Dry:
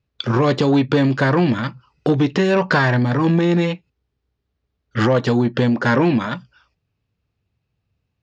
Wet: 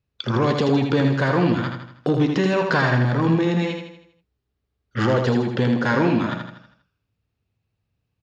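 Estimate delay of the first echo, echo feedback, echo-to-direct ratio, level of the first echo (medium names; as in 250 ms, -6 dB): 80 ms, 47%, -4.0 dB, -5.0 dB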